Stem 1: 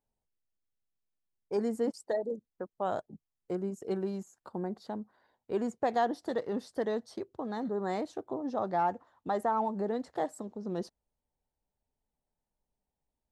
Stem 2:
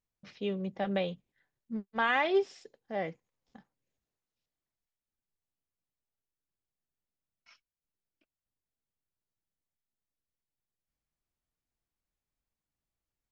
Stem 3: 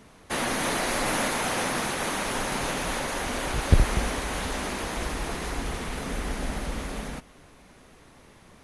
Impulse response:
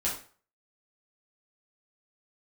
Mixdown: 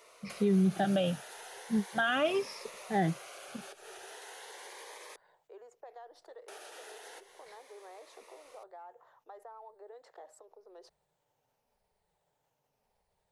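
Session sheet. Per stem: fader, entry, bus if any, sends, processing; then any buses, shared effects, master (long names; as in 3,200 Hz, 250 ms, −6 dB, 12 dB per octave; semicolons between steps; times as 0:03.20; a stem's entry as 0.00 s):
−17.5 dB, 0.00 s, bus A, no send, high-shelf EQ 4,900 Hz −11.5 dB; envelope flattener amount 50%
−0.5 dB, 0.00 s, no bus, no send, rippled gain that drifts along the octave scale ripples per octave 0.89, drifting −0.87 Hz, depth 19 dB; parametric band 150 Hz +11 dB 1.4 octaves
−1.0 dB, 0.00 s, muted 0:05.16–0:06.48, bus A, no send, downward compressor 6 to 1, threshold −31 dBFS, peak gain reduction 18.5 dB; phaser whose notches keep moving one way rising 0.36 Hz
bus A: 0.0 dB, Butterworth high-pass 400 Hz 48 dB per octave; downward compressor 6 to 1, threshold −46 dBFS, peak gain reduction 11.5 dB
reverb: not used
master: brickwall limiter −19.5 dBFS, peak gain reduction 7.5 dB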